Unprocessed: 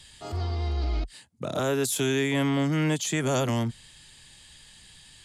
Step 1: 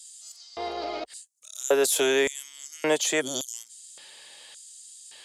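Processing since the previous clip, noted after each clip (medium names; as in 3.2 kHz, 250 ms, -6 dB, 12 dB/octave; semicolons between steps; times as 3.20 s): time-frequency box 3.21–3.54 s, 380–3000 Hz -22 dB; LFO high-pass square 0.88 Hz 530–6900 Hz; trim +4 dB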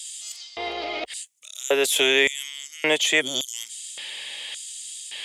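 high-order bell 2.6 kHz +10 dB 1.1 oct; reverse; upward compressor, threshold -26 dBFS; reverse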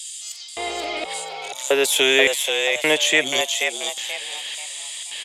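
frequency-shifting echo 483 ms, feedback 35%, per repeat +96 Hz, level -5 dB; trim +2.5 dB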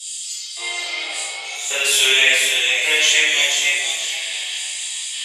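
band-pass filter 5.5 kHz, Q 0.69; reverberation RT60 1.4 s, pre-delay 3 ms, DRR -13.5 dB; trim -4 dB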